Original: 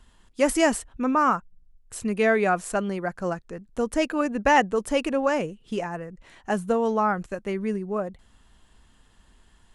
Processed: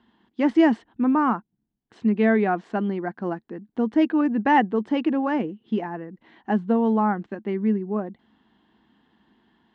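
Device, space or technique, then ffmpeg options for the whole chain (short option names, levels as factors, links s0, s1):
kitchen radio: -af "highpass=180,equalizer=f=220:t=q:w=4:g=9,equalizer=f=320:t=q:w=4:g=8,equalizer=f=560:t=q:w=4:g=-8,equalizer=f=810:t=q:w=4:g=3,equalizer=f=1300:t=q:w=4:g=-6,equalizer=f=2500:t=q:w=4:g=-8,lowpass=f=3400:w=0.5412,lowpass=f=3400:w=1.3066"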